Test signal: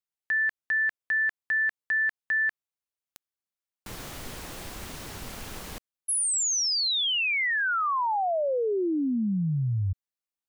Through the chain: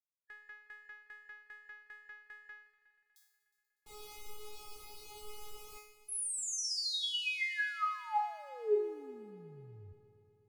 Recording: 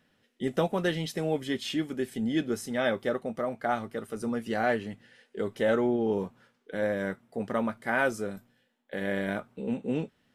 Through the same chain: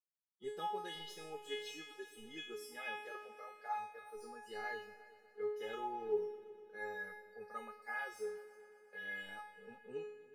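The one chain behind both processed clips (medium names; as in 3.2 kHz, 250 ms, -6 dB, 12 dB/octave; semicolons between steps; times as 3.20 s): crossover distortion -55.5 dBFS; dynamic bell 7.6 kHz, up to -3 dB, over -51 dBFS, Q 2.8; spectral noise reduction 24 dB; feedback comb 420 Hz, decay 0.62 s, mix 100%; multi-head delay 121 ms, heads all three, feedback 59%, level -22 dB; trim +9 dB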